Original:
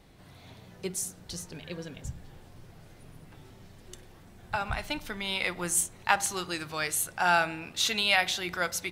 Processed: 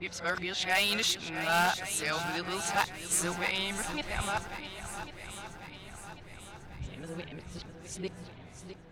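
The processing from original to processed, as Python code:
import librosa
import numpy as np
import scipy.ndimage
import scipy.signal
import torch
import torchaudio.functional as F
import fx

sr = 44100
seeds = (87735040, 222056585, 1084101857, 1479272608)

p1 = np.flip(x).copy()
p2 = fx.transient(p1, sr, attack_db=-3, sustain_db=2)
p3 = (np.mod(10.0 ** (18.5 / 20.0) * p2 + 1.0, 2.0) - 1.0) / 10.0 ** (18.5 / 20.0)
p4 = p2 + (p3 * librosa.db_to_amplitude(-6.5))
p5 = fx.env_lowpass(p4, sr, base_hz=2000.0, full_db=-20.5)
p6 = fx.echo_swing(p5, sr, ms=1095, ratio=1.5, feedback_pct=49, wet_db=-10.5)
y = p6 * librosa.db_to_amplitude(-4.0)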